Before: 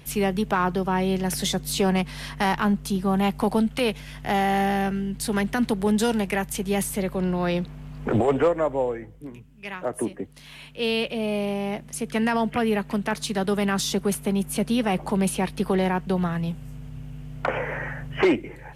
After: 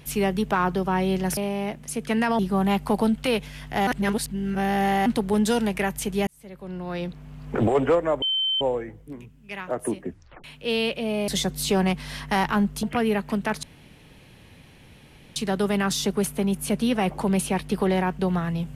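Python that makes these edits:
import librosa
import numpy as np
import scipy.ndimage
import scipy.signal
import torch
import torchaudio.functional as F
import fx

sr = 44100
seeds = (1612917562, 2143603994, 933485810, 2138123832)

y = fx.edit(x, sr, fx.swap(start_s=1.37, length_s=1.55, other_s=11.42, other_length_s=1.02),
    fx.reverse_span(start_s=4.4, length_s=1.19),
    fx.fade_in_span(start_s=6.8, length_s=1.4),
    fx.insert_tone(at_s=8.75, length_s=0.39, hz=3090.0, db=-21.0),
    fx.tape_stop(start_s=10.19, length_s=0.39),
    fx.insert_room_tone(at_s=13.24, length_s=1.73), tone=tone)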